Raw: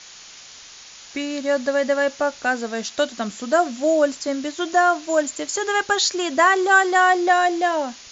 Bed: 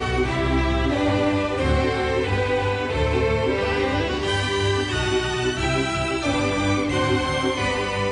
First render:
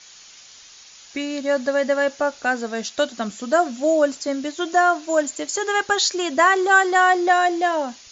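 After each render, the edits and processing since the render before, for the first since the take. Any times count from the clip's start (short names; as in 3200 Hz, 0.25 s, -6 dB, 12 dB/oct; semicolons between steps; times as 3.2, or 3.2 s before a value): denoiser 6 dB, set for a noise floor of -43 dBFS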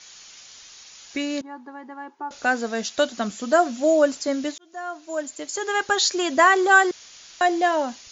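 1.41–2.31 double band-pass 580 Hz, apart 1.3 oct; 4.58–6.18 fade in; 6.91–7.41 room tone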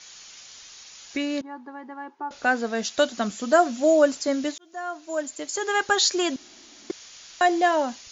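1.17–2.82 air absorption 72 m; 6.36–6.9 room tone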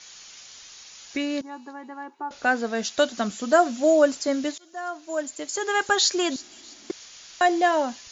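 thin delay 0.324 s, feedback 41%, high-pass 4600 Hz, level -16 dB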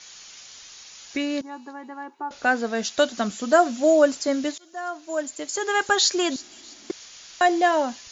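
gain +1 dB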